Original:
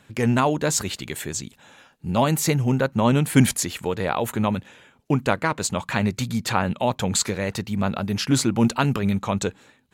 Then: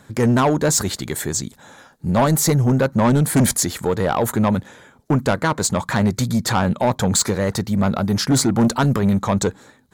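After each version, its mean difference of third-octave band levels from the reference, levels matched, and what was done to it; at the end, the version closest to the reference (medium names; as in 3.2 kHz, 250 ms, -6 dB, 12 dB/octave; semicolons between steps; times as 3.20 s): 2.5 dB: peaking EQ 2.7 kHz -14 dB 0.51 oct; saturation -18 dBFS, distortion -11 dB; trim +7.5 dB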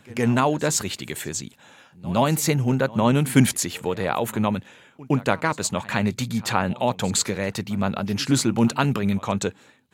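1.0 dB: high-pass 86 Hz; on a send: reverse echo 114 ms -21 dB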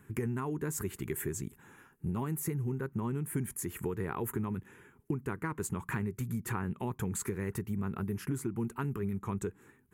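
6.0 dB: FFT filter 160 Hz 0 dB, 260 Hz -4 dB, 400 Hz +4 dB, 580 Hz -20 dB, 1 kHz -5 dB, 1.9 kHz -6 dB, 4.1 kHz -24 dB, 11 kHz +2 dB; compression 10:1, threshold -31 dBFS, peak gain reduction 18.5 dB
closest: second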